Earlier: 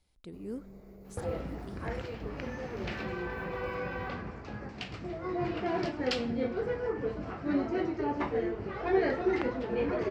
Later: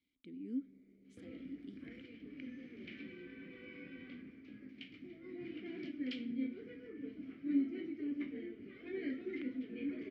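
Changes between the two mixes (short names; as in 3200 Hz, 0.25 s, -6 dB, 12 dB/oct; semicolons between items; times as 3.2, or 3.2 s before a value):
speech +5.5 dB; master: add vowel filter i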